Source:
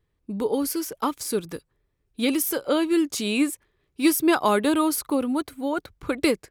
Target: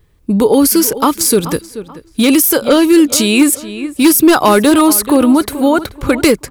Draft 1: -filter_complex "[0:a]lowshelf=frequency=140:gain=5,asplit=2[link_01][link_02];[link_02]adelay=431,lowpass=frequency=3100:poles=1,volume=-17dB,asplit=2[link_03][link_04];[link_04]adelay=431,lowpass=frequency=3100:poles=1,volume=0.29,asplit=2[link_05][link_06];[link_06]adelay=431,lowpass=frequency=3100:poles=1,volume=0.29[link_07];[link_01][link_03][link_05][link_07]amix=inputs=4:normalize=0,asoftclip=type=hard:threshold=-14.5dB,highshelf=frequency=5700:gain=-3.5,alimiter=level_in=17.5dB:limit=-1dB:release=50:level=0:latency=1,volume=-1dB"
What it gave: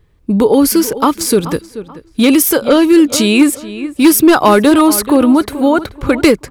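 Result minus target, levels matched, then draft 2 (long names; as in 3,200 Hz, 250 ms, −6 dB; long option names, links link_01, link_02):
8,000 Hz band −3.0 dB
-filter_complex "[0:a]lowshelf=frequency=140:gain=5,asplit=2[link_01][link_02];[link_02]adelay=431,lowpass=frequency=3100:poles=1,volume=-17dB,asplit=2[link_03][link_04];[link_04]adelay=431,lowpass=frequency=3100:poles=1,volume=0.29,asplit=2[link_05][link_06];[link_06]adelay=431,lowpass=frequency=3100:poles=1,volume=0.29[link_07];[link_01][link_03][link_05][link_07]amix=inputs=4:normalize=0,asoftclip=type=hard:threshold=-14.5dB,highshelf=frequency=5700:gain=6,alimiter=level_in=17.5dB:limit=-1dB:release=50:level=0:latency=1,volume=-1dB"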